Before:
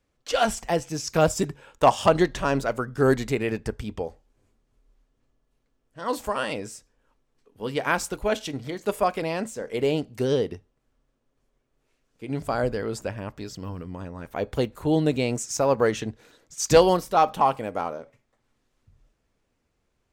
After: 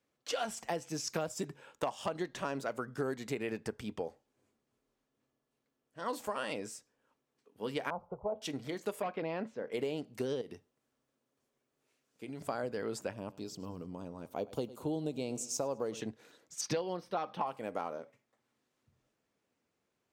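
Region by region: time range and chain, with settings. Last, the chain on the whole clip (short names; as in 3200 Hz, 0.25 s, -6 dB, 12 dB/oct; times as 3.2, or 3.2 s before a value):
7.9–8.42 LPF 1100 Hz 24 dB/oct + low shelf 190 Hz +6 dB + fixed phaser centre 710 Hz, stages 4
9.02–9.72 hard clip -19.5 dBFS + air absorption 290 m
10.41–12.41 high shelf 4900 Hz +6 dB + compressor 4:1, threshold -33 dBFS
13.13–16.01 bell 1800 Hz -14.5 dB 0.82 oct + feedback echo 0.104 s, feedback 45%, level -20 dB
16.61–17.47 polynomial smoothing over 15 samples + comb 5.8 ms, depth 39%
whole clip: HPF 160 Hz 12 dB/oct; compressor 12:1, threshold -26 dBFS; gain -5.5 dB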